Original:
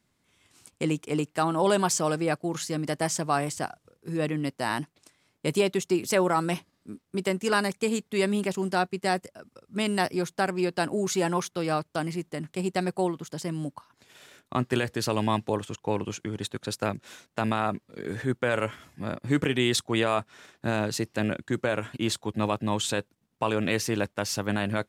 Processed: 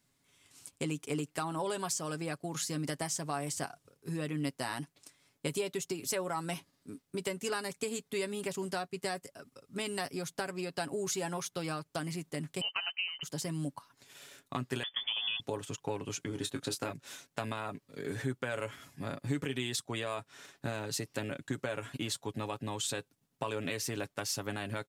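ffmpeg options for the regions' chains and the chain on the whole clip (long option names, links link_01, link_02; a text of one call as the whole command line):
ffmpeg -i in.wav -filter_complex "[0:a]asettb=1/sr,asplit=3[link_01][link_02][link_03];[link_01]atrim=end=12.614[link_04];[link_02]atrim=start=12.61:end=13.23,asetpts=PTS-STARTPTS,afade=type=in:duration=0.004:curve=qsin,afade=type=out:start_time=0.616:duration=0.004:curve=qsin,lowpass=frequency=2700:width_type=q:width=0.5098,lowpass=frequency=2700:width_type=q:width=0.6013,lowpass=frequency=2700:width_type=q:width=0.9,lowpass=frequency=2700:width_type=q:width=2.563,afreqshift=-3200,equalizer=frequency=940:width_type=o:width=1.5:gain=11.5[link_05];[link_03]atrim=start=13.226[link_06];[link_04][link_05]acrossfade=duration=0.004:curve1=hsin:curve2=qsin[link_07];[link_07][link_06]acrossfade=duration=0.004:curve1=qsin:curve2=hsin,asettb=1/sr,asplit=3[link_08][link_09][link_10];[link_08]atrim=end=14.834[link_11];[link_09]atrim=start=14.83:end=15.4,asetpts=PTS-STARTPTS,afade=type=in:duration=0.004:curve=qsin,afade=type=out:start_time=0.566:duration=0.004:curve=qsin,deesser=0.95,highpass=110,lowpass=frequency=3100:width_type=q:width=0.5098,lowpass=frequency=3100:width_type=q:width=0.6013,lowpass=frequency=3100:width_type=q:width=0.9,lowpass=frequency=3100:width_type=q:width=2.563,afreqshift=-3600[link_12];[link_10]atrim=start=15.396[link_13];[link_11][link_12]acrossfade=duration=0.004:curve1=hsin:curve2=qsin[link_14];[link_14][link_13]acrossfade=duration=0.004:curve1=qsin:curve2=hsin,asettb=1/sr,asplit=3[link_15][link_16][link_17];[link_15]atrim=end=16.284[link_18];[link_16]atrim=start=16.28:end=16.93,asetpts=PTS-STARTPTS,afade=type=in:duration=0.004:curve=qsin,afade=type=out:start_time=0.646:duration=0.004:curve=qsin,equalizer=frequency=290:width_type=o:width=0.38:gain=5.5,asplit=2[link_19][link_20];[link_20]adelay=22,volume=-8dB[link_21];[link_19][link_21]amix=inputs=2:normalize=0,atrim=end_sample=28665[link_22];[link_17]atrim=start=16.926[link_23];[link_18][link_22]acrossfade=duration=0.004:curve1=hsin:curve2=qsin[link_24];[link_24][link_23]acrossfade=duration=0.004:curve1=qsin:curve2=hsin,highshelf=frequency=4300:gain=7.5,acompressor=threshold=-28dB:ratio=6,aecho=1:1:7.2:0.46,volume=-4.5dB" out.wav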